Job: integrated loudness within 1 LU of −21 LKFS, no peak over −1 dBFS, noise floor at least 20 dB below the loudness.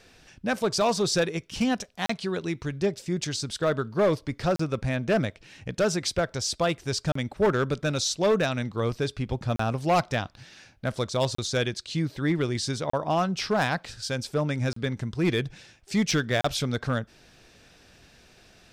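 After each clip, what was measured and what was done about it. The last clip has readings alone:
share of clipped samples 0.9%; peaks flattened at −16.5 dBFS; number of dropouts 8; longest dropout 34 ms; integrated loudness −27.5 LKFS; sample peak −16.5 dBFS; target loudness −21.0 LKFS
→ clipped peaks rebuilt −16.5 dBFS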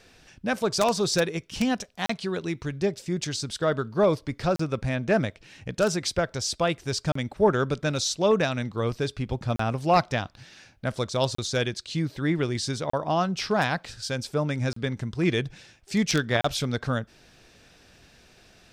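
share of clipped samples 0.0%; number of dropouts 8; longest dropout 34 ms
→ repair the gap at 0:02.06/0:04.56/0:07.12/0:09.56/0:11.35/0:12.90/0:14.73/0:16.41, 34 ms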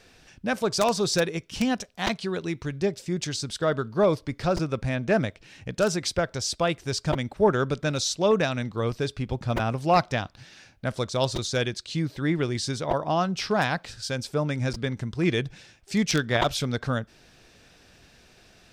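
number of dropouts 0; integrated loudness −26.5 LKFS; sample peak −7.5 dBFS; target loudness −21.0 LKFS
→ level +5.5 dB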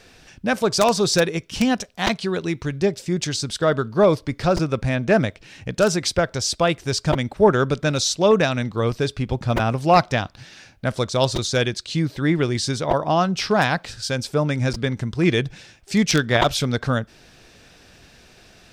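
integrated loudness −21.0 LKFS; sample peak −2.0 dBFS; background noise floor −51 dBFS

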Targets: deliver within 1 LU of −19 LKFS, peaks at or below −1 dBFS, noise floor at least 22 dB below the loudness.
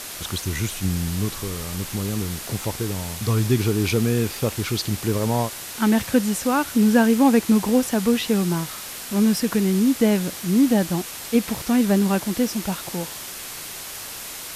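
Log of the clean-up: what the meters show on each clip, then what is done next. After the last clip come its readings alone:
background noise floor −35 dBFS; target noise floor −44 dBFS; integrated loudness −22.0 LKFS; sample peak −5.0 dBFS; target loudness −19.0 LKFS
→ broadband denoise 9 dB, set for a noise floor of −35 dBFS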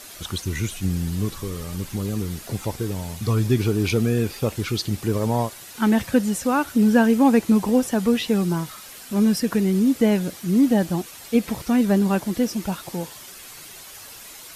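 background noise floor −41 dBFS; target noise floor −44 dBFS
→ broadband denoise 6 dB, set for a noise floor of −41 dBFS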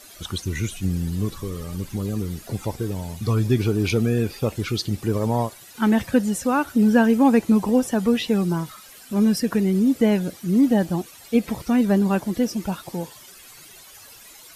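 background noise floor −46 dBFS; integrated loudness −22.0 LKFS; sample peak −5.5 dBFS; target loudness −19.0 LKFS
→ level +3 dB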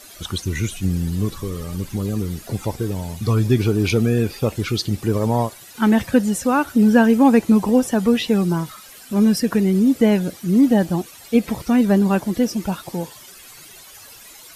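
integrated loudness −19.0 LKFS; sample peak −2.5 dBFS; background noise floor −43 dBFS

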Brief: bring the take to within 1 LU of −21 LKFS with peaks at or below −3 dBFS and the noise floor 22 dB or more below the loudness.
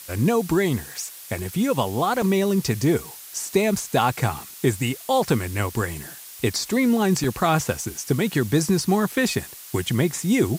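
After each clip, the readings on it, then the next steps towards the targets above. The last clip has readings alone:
number of dropouts 3; longest dropout 2.3 ms; background noise floor −41 dBFS; target noise floor −45 dBFS; integrated loudness −23.0 LKFS; sample peak −6.5 dBFS; target loudness −21.0 LKFS
→ repair the gap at 0:02.22/0:07.24/0:09.12, 2.3 ms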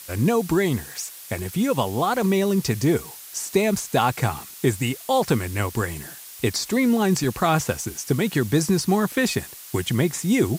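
number of dropouts 0; background noise floor −41 dBFS; target noise floor −45 dBFS
→ noise reduction from a noise print 6 dB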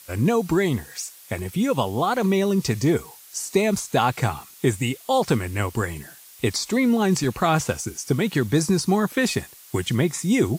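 background noise floor −47 dBFS; integrated loudness −23.0 LKFS; sample peak −7.0 dBFS; target loudness −21.0 LKFS
→ level +2 dB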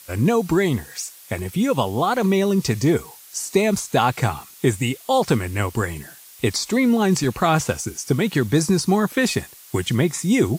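integrated loudness −21.0 LKFS; sample peak −5.0 dBFS; background noise floor −45 dBFS

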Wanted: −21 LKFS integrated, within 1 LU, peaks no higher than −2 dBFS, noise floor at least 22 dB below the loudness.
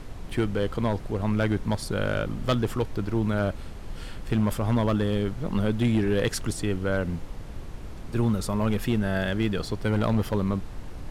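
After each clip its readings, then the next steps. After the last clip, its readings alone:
share of clipped samples 0.9%; peaks flattened at −16.5 dBFS; background noise floor −39 dBFS; target noise floor −49 dBFS; integrated loudness −27.0 LKFS; sample peak −16.5 dBFS; target loudness −21.0 LKFS
→ clipped peaks rebuilt −16.5 dBFS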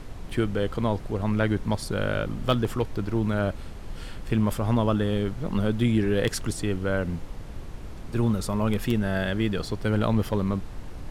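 share of clipped samples 0.0%; background noise floor −39 dBFS; target noise floor −49 dBFS
→ noise reduction from a noise print 10 dB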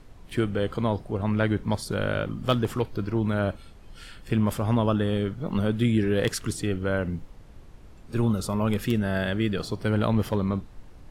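background noise floor −48 dBFS; target noise floor −49 dBFS
→ noise reduction from a noise print 6 dB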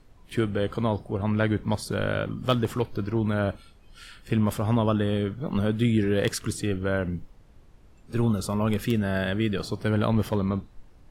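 background noise floor −54 dBFS; integrated loudness −26.5 LKFS; sample peak −8.0 dBFS; target loudness −21.0 LKFS
→ level +5.5 dB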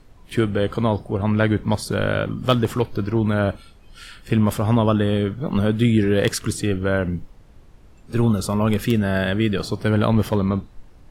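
integrated loudness −21.0 LKFS; sample peak −2.5 dBFS; background noise floor −48 dBFS

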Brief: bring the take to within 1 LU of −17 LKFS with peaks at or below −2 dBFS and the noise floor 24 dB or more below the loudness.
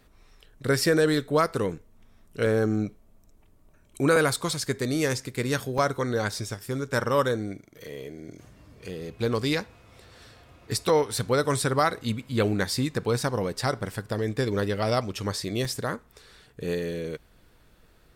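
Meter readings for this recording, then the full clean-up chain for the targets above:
number of dropouts 5; longest dropout 2.5 ms; integrated loudness −26.5 LKFS; sample peak −9.5 dBFS; target loudness −17.0 LKFS
→ repair the gap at 0:02.46/0:04.16/0:05.78/0:10.89/0:15.65, 2.5 ms
level +9.5 dB
brickwall limiter −2 dBFS

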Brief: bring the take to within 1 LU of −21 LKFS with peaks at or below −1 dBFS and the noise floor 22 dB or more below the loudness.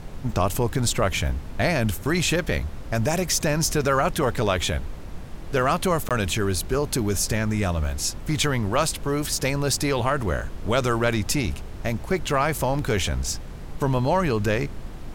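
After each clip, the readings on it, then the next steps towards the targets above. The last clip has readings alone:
number of dropouts 1; longest dropout 17 ms; background noise floor −36 dBFS; target noise floor −46 dBFS; integrated loudness −24.0 LKFS; sample peak −8.5 dBFS; target loudness −21.0 LKFS
→ repair the gap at 0:06.09, 17 ms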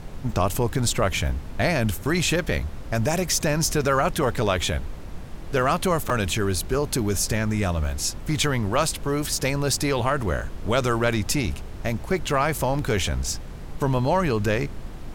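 number of dropouts 0; background noise floor −36 dBFS; target noise floor −46 dBFS
→ noise reduction from a noise print 10 dB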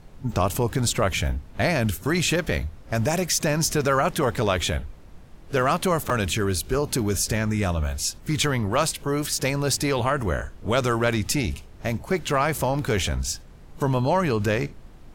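background noise floor −45 dBFS; target noise floor −47 dBFS
→ noise reduction from a noise print 6 dB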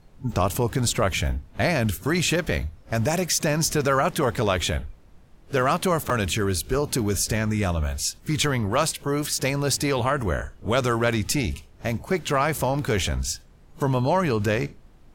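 background noise floor −51 dBFS; integrated loudness −24.5 LKFS; sample peak −9.5 dBFS; target loudness −21.0 LKFS
→ level +3.5 dB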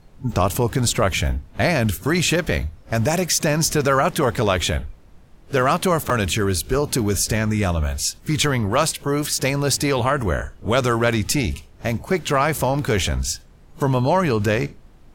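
integrated loudness −20.5 LKFS; sample peak −6.0 dBFS; background noise floor −47 dBFS

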